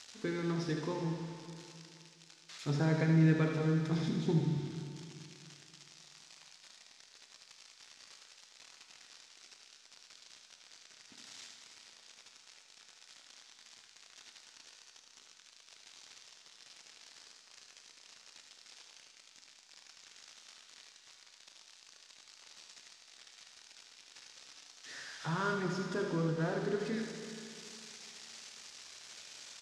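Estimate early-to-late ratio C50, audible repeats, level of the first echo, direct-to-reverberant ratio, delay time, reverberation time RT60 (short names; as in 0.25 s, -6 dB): 2.0 dB, 1, -7.5 dB, 1.0 dB, 77 ms, 2.5 s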